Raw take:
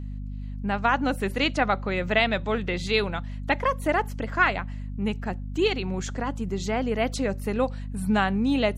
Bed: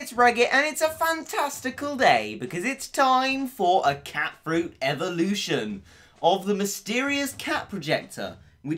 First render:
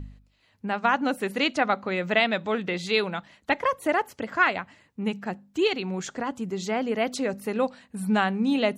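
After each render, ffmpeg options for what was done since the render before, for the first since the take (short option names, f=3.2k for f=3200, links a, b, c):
-af "bandreject=f=50:t=h:w=4,bandreject=f=100:t=h:w=4,bandreject=f=150:t=h:w=4,bandreject=f=200:t=h:w=4,bandreject=f=250:t=h:w=4"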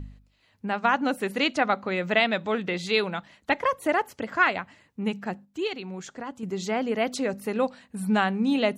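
-filter_complex "[0:a]asplit=3[a][b][c];[a]atrim=end=5.452[d];[b]atrim=start=5.448:end=6.432,asetpts=PTS-STARTPTS,volume=-6dB[e];[c]atrim=start=6.428[f];[d][e]acrossfade=d=0.004:c1=hsin:c2=hsin[g];[g][f]acrossfade=d=0.004:c1=hsin:c2=hsin"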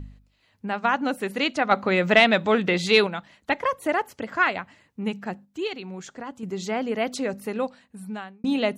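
-filter_complex "[0:a]asettb=1/sr,asplit=3[a][b][c];[a]atrim=end=1.714[d];[b]atrim=start=1.71:end=3.07,asetpts=PTS-STARTPTS,afade=t=in:d=0.004:c=qsin,afade=t=out:st=1.356:d=0.004:c=qsin,acontrast=62[e];[c]atrim=start=3.066[f];[d][e]acrossfade=d=0.004:c1=hsin:c2=qsin[g];[g][f]acrossfade=d=0.004:c1=qsin:c2=hsin,asplit=2[h][i];[h]atrim=end=8.44,asetpts=PTS-STARTPTS,afade=t=out:st=7.4:d=1.04[j];[i]atrim=start=8.44,asetpts=PTS-STARTPTS,afade=t=in:d=0.004:c=hsin[k];[j][k]concat=n=2:v=0:a=1"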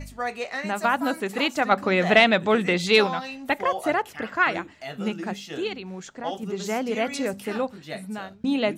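-filter_complex "[1:a]volume=-11dB[a];[0:a][a]amix=inputs=2:normalize=0"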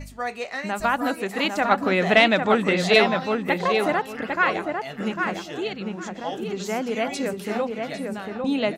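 -filter_complex "[0:a]asplit=2[a][b];[b]adelay=801,lowpass=f=2.2k:p=1,volume=-4dB,asplit=2[c][d];[d]adelay=801,lowpass=f=2.2k:p=1,volume=0.23,asplit=2[e][f];[f]adelay=801,lowpass=f=2.2k:p=1,volume=0.23[g];[a][c][e][g]amix=inputs=4:normalize=0"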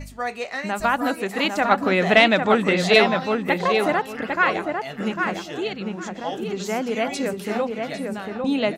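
-af "volume=1.5dB"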